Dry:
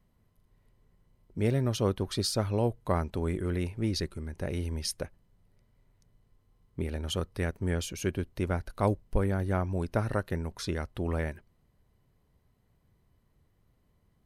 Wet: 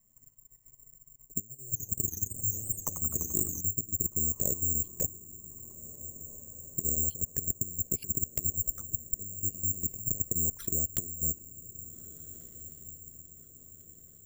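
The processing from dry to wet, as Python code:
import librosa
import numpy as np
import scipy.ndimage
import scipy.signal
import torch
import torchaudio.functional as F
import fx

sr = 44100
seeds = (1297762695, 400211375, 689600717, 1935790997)

y = fx.block_float(x, sr, bits=7)
y = scipy.signal.sosfilt(scipy.signal.butter(6, 8300.0, 'lowpass', fs=sr, output='sos'), y)
y = fx.env_lowpass_down(y, sr, base_hz=320.0, full_db=-27.0)
y = fx.peak_eq(y, sr, hz=900.0, db=-2.5, octaves=1.5)
y = fx.over_compress(y, sr, threshold_db=-35.0, ratio=-0.5)
y = fx.transient(y, sr, attack_db=6, sustain_db=-11)
y = fx.level_steps(y, sr, step_db=12)
y = fx.env_flanger(y, sr, rest_ms=10.3, full_db=-36.5)
y = fx.echo_diffused(y, sr, ms=1633, feedback_pct=48, wet_db=-15.0)
y = (np.kron(scipy.signal.resample_poly(y, 1, 6), np.eye(6)[0]) * 6)[:len(y)]
y = fx.echo_warbled(y, sr, ms=86, feedback_pct=77, rate_hz=2.8, cents=214, wet_db=-8.5, at=(1.42, 3.61))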